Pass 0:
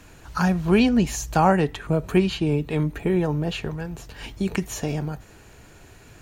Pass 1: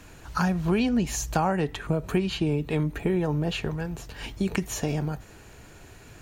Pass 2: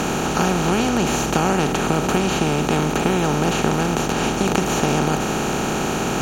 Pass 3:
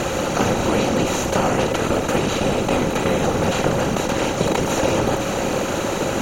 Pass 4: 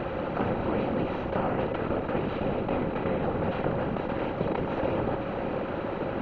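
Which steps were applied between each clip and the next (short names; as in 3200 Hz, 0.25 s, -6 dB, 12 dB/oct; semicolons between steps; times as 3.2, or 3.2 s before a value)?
compressor 4:1, threshold -21 dBFS, peak gain reduction 8 dB
per-bin compression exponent 0.2; gain -1 dB
whisperiser; small resonant body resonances 540/2000/3900 Hz, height 10 dB, ringing for 45 ms; gain -1.5 dB
Gaussian blur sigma 3.3 samples; gain -8.5 dB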